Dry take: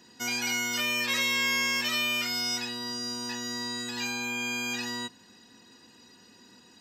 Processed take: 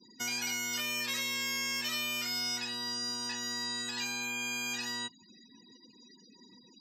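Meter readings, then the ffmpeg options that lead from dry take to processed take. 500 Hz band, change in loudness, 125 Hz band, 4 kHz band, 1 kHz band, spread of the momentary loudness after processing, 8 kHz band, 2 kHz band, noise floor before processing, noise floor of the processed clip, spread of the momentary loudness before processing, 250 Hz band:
-8.0 dB, -5.0 dB, -6.5 dB, -4.0 dB, -6.0 dB, 3 LU, -2.0 dB, -6.5 dB, -57 dBFS, -60 dBFS, 8 LU, -7.0 dB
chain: -filter_complex "[0:a]afftfilt=real='re*gte(hypot(re,im),0.00398)':imag='im*gte(hypot(re,im),0.00398)':win_size=1024:overlap=0.75,acrossover=split=250|720|1700|4200[a][b][c][d][e];[a]acompressor=threshold=-51dB:ratio=4[f];[b]acompressor=threshold=-52dB:ratio=4[g];[c]acompressor=threshold=-46dB:ratio=4[h];[d]acompressor=threshold=-40dB:ratio=4[i];[e]acompressor=threshold=-36dB:ratio=4[j];[f][g][h][i][j]amix=inputs=5:normalize=0"

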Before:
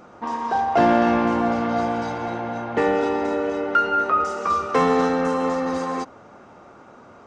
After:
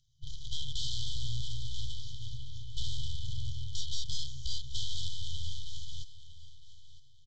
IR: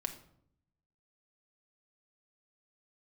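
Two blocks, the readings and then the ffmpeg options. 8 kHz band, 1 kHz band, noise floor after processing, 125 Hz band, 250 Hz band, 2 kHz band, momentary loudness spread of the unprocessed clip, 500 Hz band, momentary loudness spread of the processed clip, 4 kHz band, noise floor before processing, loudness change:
-0.5 dB, under -40 dB, -53 dBFS, -3.5 dB, under -35 dB, under -40 dB, 10 LU, under -40 dB, 12 LU, +2.5 dB, -47 dBFS, -18.0 dB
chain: -filter_complex "[0:a]aeval=exprs='0.501*(cos(1*acos(clip(val(0)/0.501,-1,1)))-cos(1*PI/2))+0.0708*(cos(3*acos(clip(val(0)/0.501,-1,1)))-cos(3*PI/2))+0.0562*(cos(4*acos(clip(val(0)/0.501,-1,1)))-cos(4*PI/2))+0.0562*(cos(7*acos(clip(val(0)/0.501,-1,1)))-cos(7*PI/2))+0.0562*(cos(8*acos(clip(val(0)/0.501,-1,1)))-cos(8*PI/2))':c=same,acrossover=split=3600[a][b];[b]acompressor=threshold=-51dB:ratio=4:attack=1:release=60[c];[a][c]amix=inputs=2:normalize=0,aresample=16000,asoftclip=type=hard:threshold=-23dB,aresample=44100,afftfilt=real='re*(1-between(b*sr/4096,150,3000))':imag='im*(1-between(b*sr/4096,150,3000))':win_size=4096:overlap=0.75,aecho=1:1:958|1916|2874:0.158|0.0428|0.0116,volume=1dB"

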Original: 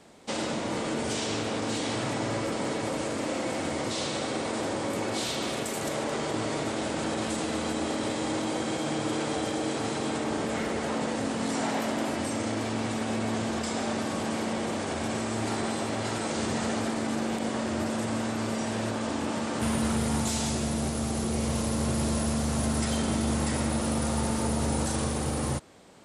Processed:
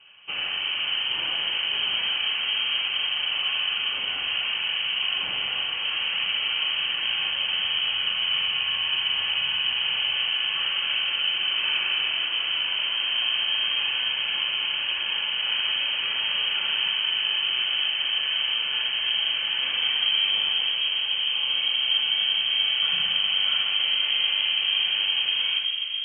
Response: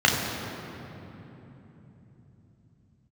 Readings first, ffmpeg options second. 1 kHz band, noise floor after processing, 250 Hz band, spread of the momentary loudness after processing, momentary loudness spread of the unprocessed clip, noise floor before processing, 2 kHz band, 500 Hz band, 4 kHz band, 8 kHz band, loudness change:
-6.5 dB, -29 dBFS, under -25 dB, 3 LU, 3 LU, -32 dBFS, +10.0 dB, -18.5 dB, +18.5 dB, under -40 dB, +7.0 dB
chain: -filter_complex "[0:a]asplit=2[a][b];[1:a]atrim=start_sample=2205,asetrate=22932,aresample=44100[c];[b][c]afir=irnorm=-1:irlink=0,volume=-21.5dB[d];[a][d]amix=inputs=2:normalize=0,lowpass=f=2.8k:t=q:w=0.5098,lowpass=f=2.8k:t=q:w=0.6013,lowpass=f=2.8k:t=q:w=0.9,lowpass=f=2.8k:t=q:w=2.563,afreqshift=-3300,volume=-1.5dB"

